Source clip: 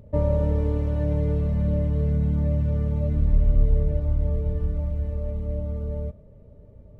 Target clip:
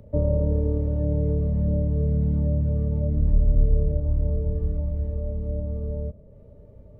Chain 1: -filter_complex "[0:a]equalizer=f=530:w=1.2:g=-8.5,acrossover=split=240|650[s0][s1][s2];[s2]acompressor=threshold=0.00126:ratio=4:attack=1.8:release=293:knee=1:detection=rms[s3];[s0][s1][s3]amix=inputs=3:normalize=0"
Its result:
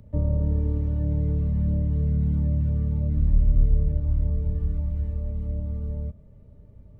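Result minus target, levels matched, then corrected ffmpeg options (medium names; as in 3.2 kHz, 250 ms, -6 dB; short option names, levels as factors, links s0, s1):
500 Hz band -9.0 dB
-filter_complex "[0:a]equalizer=f=530:w=1.2:g=3,acrossover=split=240|650[s0][s1][s2];[s2]acompressor=threshold=0.00126:ratio=4:attack=1.8:release=293:knee=1:detection=rms[s3];[s0][s1][s3]amix=inputs=3:normalize=0"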